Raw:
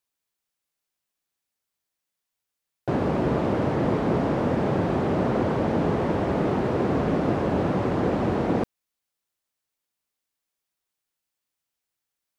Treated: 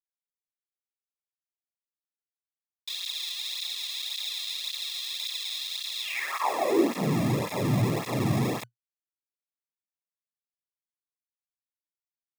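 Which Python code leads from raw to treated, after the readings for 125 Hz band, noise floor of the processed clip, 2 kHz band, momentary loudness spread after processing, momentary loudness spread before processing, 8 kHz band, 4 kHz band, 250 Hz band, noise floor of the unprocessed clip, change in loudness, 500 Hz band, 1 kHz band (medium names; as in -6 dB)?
-4.0 dB, under -85 dBFS, -0.5 dB, 6 LU, 1 LU, no reading, +15.0 dB, -7.0 dB, -85 dBFS, -4.5 dB, -8.0 dB, -5.5 dB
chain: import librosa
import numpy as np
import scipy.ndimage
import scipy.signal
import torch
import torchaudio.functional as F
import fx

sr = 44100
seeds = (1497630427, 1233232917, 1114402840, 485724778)

y = fx.high_shelf(x, sr, hz=2600.0, db=7.0)
y = fx.schmitt(y, sr, flips_db=-33.5)
y = fx.sample_hold(y, sr, seeds[0], rate_hz=1500.0, jitter_pct=0)
y = fx.filter_sweep_highpass(y, sr, from_hz=3700.0, to_hz=120.0, start_s=6.0, end_s=7.14, q=5.5)
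y = fx.flanger_cancel(y, sr, hz=1.8, depth_ms=2.4)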